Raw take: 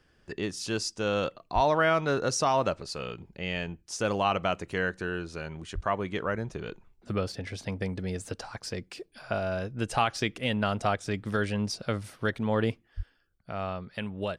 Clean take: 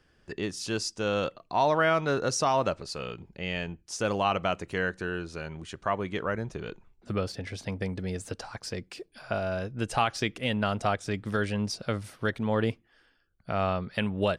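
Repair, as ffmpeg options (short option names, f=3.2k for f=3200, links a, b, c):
-filter_complex "[0:a]asplit=3[a][b][c];[a]afade=t=out:st=1.54:d=0.02[d];[b]highpass=f=140:w=0.5412,highpass=f=140:w=1.3066,afade=t=in:st=1.54:d=0.02,afade=t=out:st=1.66:d=0.02[e];[c]afade=t=in:st=1.66:d=0.02[f];[d][e][f]amix=inputs=3:normalize=0,asplit=3[g][h][i];[g]afade=t=out:st=5.74:d=0.02[j];[h]highpass=f=140:w=0.5412,highpass=f=140:w=1.3066,afade=t=in:st=5.74:d=0.02,afade=t=out:st=5.86:d=0.02[k];[i]afade=t=in:st=5.86:d=0.02[l];[j][k][l]amix=inputs=3:normalize=0,asplit=3[m][n][o];[m]afade=t=out:st=12.96:d=0.02[p];[n]highpass=f=140:w=0.5412,highpass=f=140:w=1.3066,afade=t=in:st=12.96:d=0.02,afade=t=out:st=13.08:d=0.02[q];[o]afade=t=in:st=13.08:d=0.02[r];[p][q][r]amix=inputs=3:normalize=0,asetnsamples=n=441:p=0,asendcmd='13.38 volume volume 6dB',volume=0dB"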